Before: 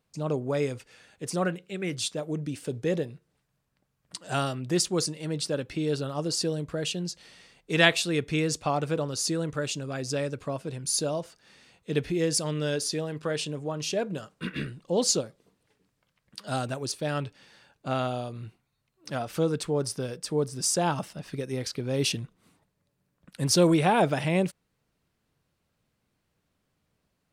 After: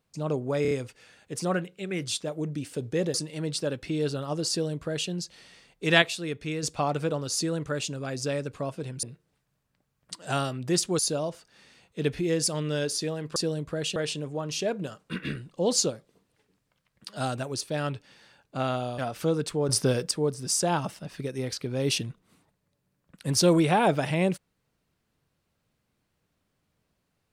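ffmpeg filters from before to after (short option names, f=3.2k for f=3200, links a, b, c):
-filter_complex "[0:a]asplit=14[a][b][c][d][e][f][g][h][i][j][k][l][m][n];[a]atrim=end=0.652[o];[b]atrim=start=0.618:end=0.652[p];[c]atrim=start=0.618:end=0.652[q];[d]atrim=start=0.618:end=3.052[r];[e]atrim=start=5.008:end=7.892[s];[f]atrim=start=7.888:end=8.502,asetpts=PTS-STARTPTS,volume=-5.5dB[t];[g]atrim=start=8.498:end=10.902[u];[h]atrim=start=3.048:end=5.012[v];[i]atrim=start=10.898:end=13.272[w];[j]atrim=start=6.368:end=6.972[x];[k]atrim=start=13.268:end=18.292[y];[l]atrim=start=19.118:end=19.832[z];[m]atrim=start=19.828:end=20.252,asetpts=PTS-STARTPTS,volume=8.5dB[aa];[n]atrim=start=20.248[ab];[o][p]acrossfade=d=0.004:c1=hsin:c2=hsin[ac];[ac][q]acrossfade=d=0.004:c1=hsin:c2=hsin[ad];[ad][r]acrossfade=d=0.004:c1=hsin:c2=hsin[ae];[ae][s]acrossfade=d=0.004:c1=hsin:c2=hsin[af];[af][t]acrossfade=d=0.004:c1=hsin:c2=hsin[ag];[ag][u]acrossfade=d=0.004:c1=hsin:c2=hsin[ah];[ah][v]acrossfade=d=0.004:c1=hsin:c2=hsin[ai];[ai][w]acrossfade=d=0.004:c1=hsin:c2=hsin[aj];[aj][x]acrossfade=d=0.004:c1=hsin:c2=hsin[ak];[ak][y]acrossfade=d=0.004:c1=hsin:c2=hsin[al];[al][z]acrossfade=d=0.004:c1=hsin:c2=hsin[am];[am][aa]acrossfade=d=0.004:c1=hsin:c2=hsin[an];[an][ab]acrossfade=d=0.004:c1=hsin:c2=hsin"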